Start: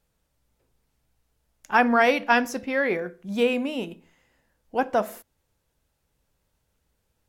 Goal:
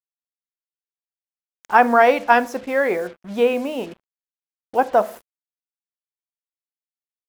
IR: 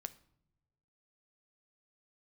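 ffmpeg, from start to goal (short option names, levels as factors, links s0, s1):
-af "equalizer=f=750:w=0.45:g=12,acrusher=bits=5:mix=0:aa=0.5,volume=0.596"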